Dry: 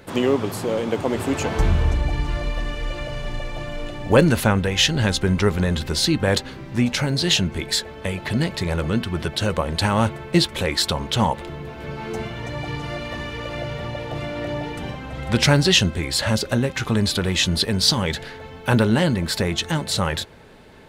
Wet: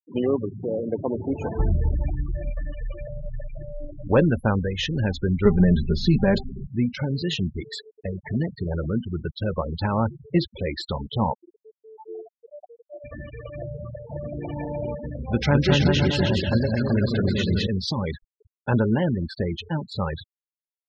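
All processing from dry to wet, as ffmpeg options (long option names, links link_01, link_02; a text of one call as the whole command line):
ffmpeg -i in.wav -filter_complex "[0:a]asettb=1/sr,asplit=3[link_01][link_02][link_03];[link_01]atrim=end=5.454[link_04];[link_02]atrim=start=5.45:end=6.67,asetpts=PTS-STARTPTS,afade=type=in:duration=0.004:curve=qsin,afade=type=out:start_time=1.216:duration=0.004:curve=qsin,acrossover=split=7500[link_05][link_06];[link_06]acompressor=threshold=-42dB:ratio=4:attack=1:release=60[link_07];[link_05][link_07]amix=inputs=2:normalize=0,lowshelf=frequency=150:gain=11.5,aecho=1:1:5:0.82,atrim=end_sample=53802[link_08];[link_03]atrim=start=6.666[link_09];[link_04][link_08]acrossfade=duration=0.004:curve1=hsin:curve2=qsin[link_10];[link_10][link_09]acrossfade=duration=0.004:curve1=qsin:curve2=hsin,asettb=1/sr,asplit=3[link_11][link_12][link_13];[link_11]atrim=end=11.344[link_14];[link_12]atrim=start=11.34:end=13.04,asetpts=PTS-STARTPTS,afade=type=in:duration=0.004:curve=qsin,afade=type=out:start_time=1.696:duration=0.004:curve=qsin,highpass=frequency=340:width=0.5412,highpass=frequency=340:width=1.3066,equalizer=frequency=2500:width_type=o:width=1.4:gain=-14[link_15];[link_13]atrim=start=13.036[link_16];[link_14][link_15]acrossfade=duration=0.004:curve1=hsin:curve2=qsin[link_17];[link_17][link_16]acrossfade=duration=0.004:curve1=qsin:curve2=hsin,asettb=1/sr,asplit=3[link_18][link_19][link_20];[link_18]atrim=end=13.874[link_21];[link_19]atrim=start=13.87:end=17.67,asetpts=PTS-STARTPTS,afade=type=in:duration=0.004:curve=qsin,afade=type=out:start_time=3.796:duration=0.004:curve=qsin,aeval=exprs='sgn(val(0))*max(abs(val(0))-0.00562,0)':channel_layout=same,aecho=1:1:210|378|512.4|619.9|705.9:0.794|0.631|0.501|0.398|0.316,atrim=end_sample=167580[link_22];[link_20]atrim=start=17.666[link_23];[link_21][link_22]acrossfade=duration=0.004:curve1=hsin:curve2=qsin[link_24];[link_24][link_23]acrossfade=duration=0.004:curve1=qsin:curve2=hsin,afftfilt=real='re*gte(hypot(re,im),0.126)':imag='im*gte(hypot(re,im),0.126)':win_size=1024:overlap=0.75,lowpass=frequency=1600:poles=1,volume=-3dB" out.wav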